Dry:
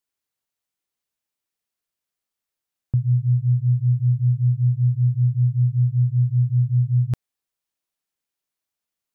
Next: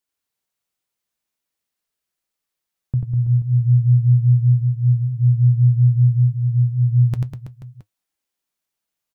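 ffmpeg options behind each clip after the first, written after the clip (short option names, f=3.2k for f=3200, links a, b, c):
-filter_complex "[0:a]asplit=2[a][b];[b]aecho=0:1:90|198|327.6|483.1|669.7:0.631|0.398|0.251|0.158|0.1[c];[a][c]amix=inputs=2:normalize=0,flanger=delay=3.3:depth=3.6:regen=-70:speed=0.61:shape=triangular,volume=5.5dB"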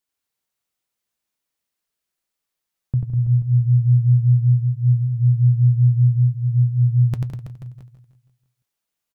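-af "aecho=1:1:163|326|489|652|815:0.2|0.108|0.0582|0.0314|0.017"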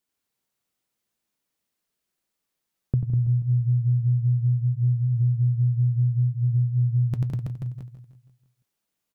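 -af "equalizer=f=220:w=0.57:g=6,acompressor=threshold=-20dB:ratio=6"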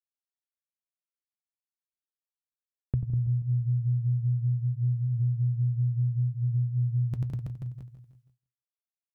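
-af "agate=range=-33dB:threshold=-52dB:ratio=3:detection=peak,equalizer=f=63:t=o:w=1:g=7.5,volume=-6.5dB"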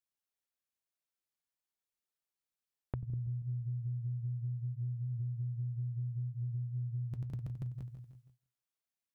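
-af "acompressor=threshold=-38dB:ratio=5,volume=1dB"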